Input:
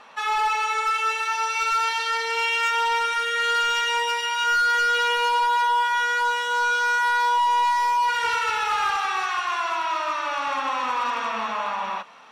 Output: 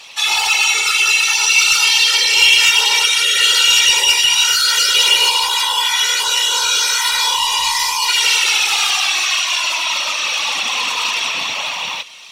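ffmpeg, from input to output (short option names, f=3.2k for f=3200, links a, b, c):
-af "afftfilt=real='hypot(re,im)*cos(2*PI*random(0))':imag='hypot(re,im)*sin(2*PI*random(1))':win_size=512:overlap=0.75,aexciter=amount=10.8:drive=5.2:freq=2.3k,acontrast=41,volume=-1dB"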